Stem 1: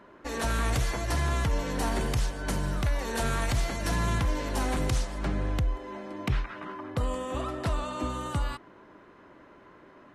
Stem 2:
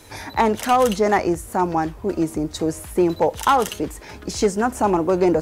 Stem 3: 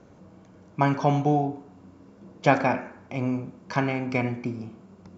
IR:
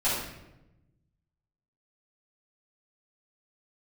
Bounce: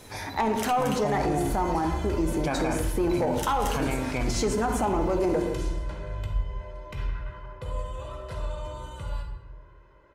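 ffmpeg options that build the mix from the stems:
-filter_complex "[0:a]aecho=1:1:2:0.69,adelay=650,volume=-13.5dB,asplit=2[a][b];[b]volume=-8.5dB[c];[1:a]acontrast=78,volume=-11dB,asplit=2[d][e];[e]volume=-14.5dB[f];[2:a]volume=-2.5dB[g];[3:a]atrim=start_sample=2205[h];[c][f]amix=inputs=2:normalize=0[i];[i][h]afir=irnorm=-1:irlink=0[j];[a][d][g][j]amix=inputs=4:normalize=0,alimiter=limit=-17.5dB:level=0:latency=1:release=28"

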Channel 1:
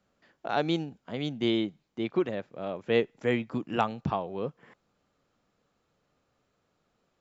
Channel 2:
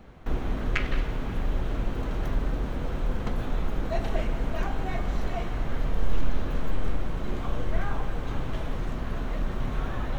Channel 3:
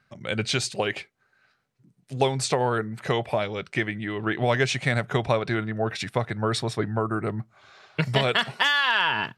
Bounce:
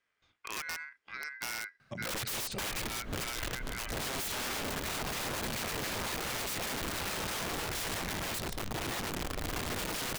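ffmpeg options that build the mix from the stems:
-filter_complex "[0:a]aeval=exprs='val(0)*sin(2*PI*1800*n/s)':c=same,volume=-5dB,asplit=2[a][b];[1:a]highshelf=f=2.9k:g=8,bandreject=f=840:w=15,adelay=2450,volume=1.5dB[c];[2:a]adelay=1800,volume=2dB[d];[b]apad=whole_len=557344[e];[c][e]sidechaincompress=threshold=-48dB:ratio=4:attack=9.1:release=142[f];[f][d]amix=inputs=2:normalize=0,asoftclip=type=tanh:threshold=-11dB,acompressor=threshold=-21dB:ratio=20,volume=0dB[g];[a][g]amix=inputs=2:normalize=0,aeval=exprs='(mod(21.1*val(0)+1,2)-1)/21.1':c=same,acompressor=threshold=-34dB:ratio=6"

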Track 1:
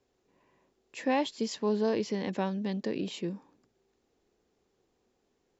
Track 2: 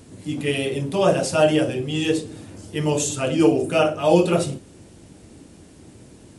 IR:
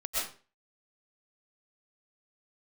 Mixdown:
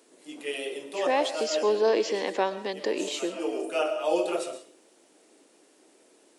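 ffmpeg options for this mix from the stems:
-filter_complex "[0:a]dynaudnorm=f=260:g=9:m=11dB,volume=-4dB,asplit=3[a][b][c];[b]volume=-17.5dB[d];[1:a]volume=-9.5dB,asplit=2[e][f];[f]volume=-13.5dB[g];[c]apad=whole_len=281634[h];[e][h]sidechaincompress=threshold=-35dB:ratio=8:attack=16:release=323[i];[2:a]atrim=start_sample=2205[j];[d][g]amix=inputs=2:normalize=0[k];[k][j]afir=irnorm=-1:irlink=0[l];[a][i][l]amix=inputs=3:normalize=0,highpass=f=350:w=0.5412,highpass=f=350:w=1.3066"

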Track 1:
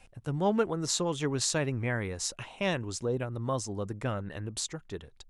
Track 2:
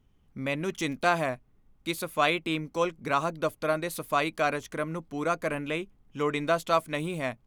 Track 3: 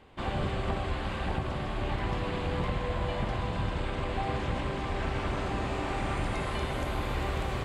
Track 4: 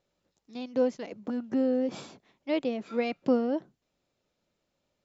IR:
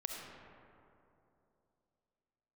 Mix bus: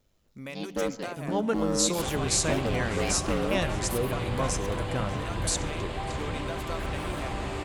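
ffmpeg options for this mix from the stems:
-filter_complex "[0:a]dynaudnorm=f=260:g=3:m=11.5dB,adelay=900,volume=-13dB,asplit=3[a][b][c];[b]volume=-9.5dB[d];[c]volume=-20.5dB[e];[1:a]acompressor=threshold=-30dB:ratio=6,volume=-6dB,asplit=2[f][g];[g]volume=-23dB[h];[2:a]adelay=1800,volume=-2.5dB,asplit=2[i][j];[j]volume=-5dB[k];[3:a]highpass=f=190:w=0.5412,highpass=f=190:w=1.3066,volume=27dB,asoftclip=hard,volume=-27dB,aeval=exprs='val(0)*sin(2*PI*50*n/s)':c=same,volume=2.5dB,asplit=2[l][m];[m]volume=-12dB[n];[4:a]atrim=start_sample=2205[o];[d][n]amix=inputs=2:normalize=0[p];[p][o]afir=irnorm=-1:irlink=0[q];[e][h][k]amix=inputs=3:normalize=0,aecho=0:1:598:1[r];[a][f][i][l][q][r]amix=inputs=6:normalize=0,highshelf=f=6.2k:g=10.5"

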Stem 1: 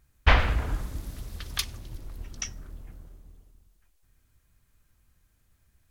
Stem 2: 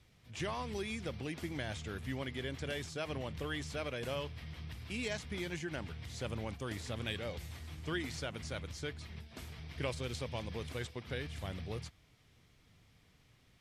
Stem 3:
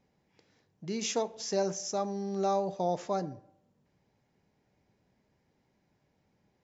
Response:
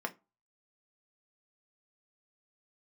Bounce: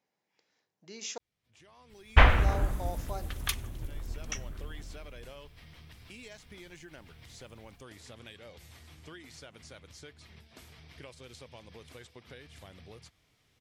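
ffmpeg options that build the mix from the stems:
-filter_complex "[0:a]equalizer=f=4.8k:t=o:w=0.75:g=-9.5,adelay=1900,volume=1dB[a];[1:a]bass=f=250:g=-5,treble=f=4k:g=2,acompressor=threshold=-46dB:ratio=3,adelay=1200,volume=-2dB[b];[2:a]highpass=f=810:p=1,volume=-4.5dB,asplit=3[c][d][e];[c]atrim=end=1.18,asetpts=PTS-STARTPTS,afade=t=out:st=1.176:d=0.004:c=hsin[f];[d]atrim=start=1.18:end=2.35,asetpts=PTS-STARTPTS,volume=0[g];[e]atrim=start=2.35,asetpts=PTS-STARTPTS,afade=t=in:d=0.004:c=hsin[h];[f][g][h]concat=n=3:v=0:a=1,asplit=2[i][j];[j]apad=whole_len=652894[k];[b][k]sidechaincompress=threshold=-53dB:ratio=12:attack=16:release=948[l];[a][l][i]amix=inputs=3:normalize=0"

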